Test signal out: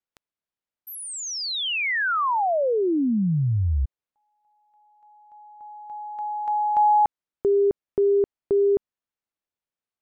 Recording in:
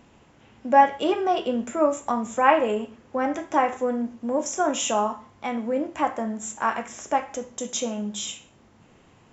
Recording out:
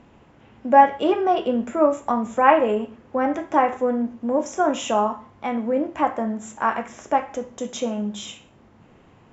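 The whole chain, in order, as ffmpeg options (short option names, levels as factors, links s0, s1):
-af "aemphasis=mode=reproduction:type=75kf,volume=1.5"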